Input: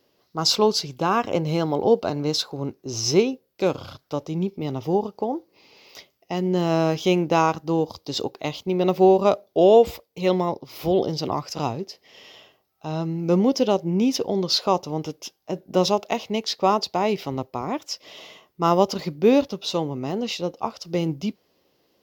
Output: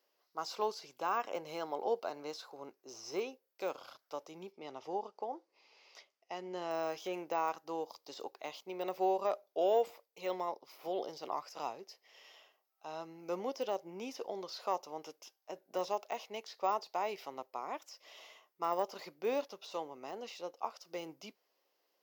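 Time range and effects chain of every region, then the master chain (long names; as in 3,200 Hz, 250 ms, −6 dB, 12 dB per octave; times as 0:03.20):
0:04.52–0:06.71: de-essing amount 90% + low-pass filter 7,100 Hz
whole clip: de-essing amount 90%; high-pass filter 650 Hz 12 dB per octave; parametric band 3,600 Hz −5 dB 0.87 octaves; level −9 dB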